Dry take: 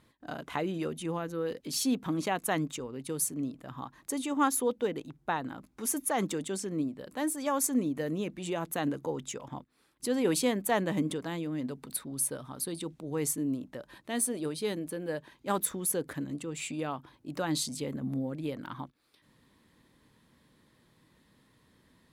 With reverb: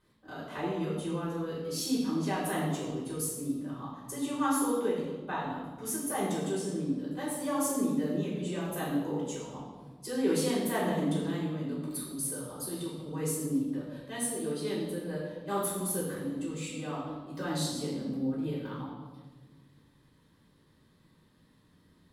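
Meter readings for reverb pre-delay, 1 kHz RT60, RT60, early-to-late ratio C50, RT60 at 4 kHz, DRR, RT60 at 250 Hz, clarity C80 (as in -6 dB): 3 ms, 1.2 s, 1.4 s, 1.5 dB, 1.1 s, -8.0 dB, 1.9 s, 3.5 dB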